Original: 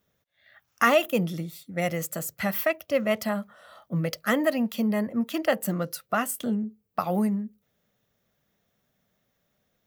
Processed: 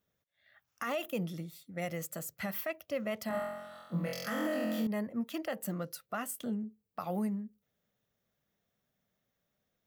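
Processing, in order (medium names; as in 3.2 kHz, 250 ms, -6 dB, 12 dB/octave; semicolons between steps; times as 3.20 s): 3.28–4.87 s: flutter echo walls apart 3.9 m, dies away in 1.1 s; peak limiter -17 dBFS, peak gain reduction 11.5 dB; trim -8.5 dB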